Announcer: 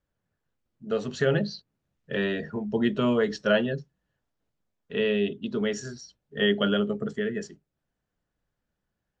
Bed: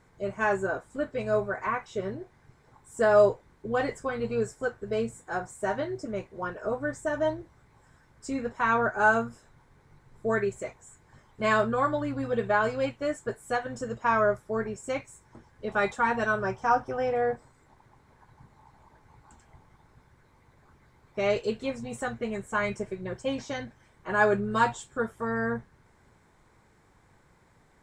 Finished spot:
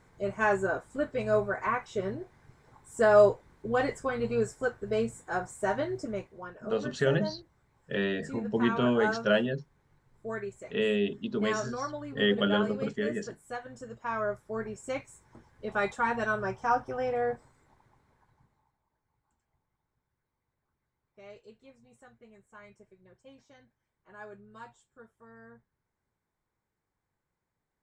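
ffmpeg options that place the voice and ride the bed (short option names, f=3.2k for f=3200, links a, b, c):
-filter_complex "[0:a]adelay=5800,volume=-2.5dB[a];[1:a]volume=6.5dB,afade=t=out:st=6.05:d=0.38:silence=0.334965,afade=t=in:st=14.06:d=0.86:silence=0.473151,afade=t=out:st=17.4:d=1.37:silence=0.0944061[b];[a][b]amix=inputs=2:normalize=0"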